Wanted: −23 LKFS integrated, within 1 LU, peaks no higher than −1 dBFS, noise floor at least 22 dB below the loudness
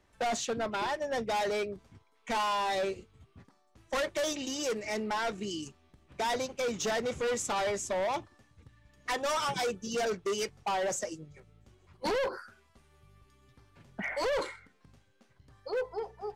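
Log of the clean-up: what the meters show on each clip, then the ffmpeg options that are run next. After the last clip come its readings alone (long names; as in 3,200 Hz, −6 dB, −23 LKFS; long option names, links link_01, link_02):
integrated loudness −33.0 LKFS; sample peak −26.0 dBFS; target loudness −23.0 LKFS
→ -af "volume=10dB"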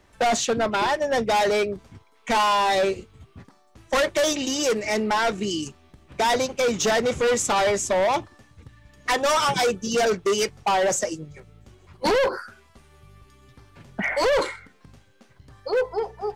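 integrated loudness −23.0 LKFS; sample peak −16.0 dBFS; background noise floor −58 dBFS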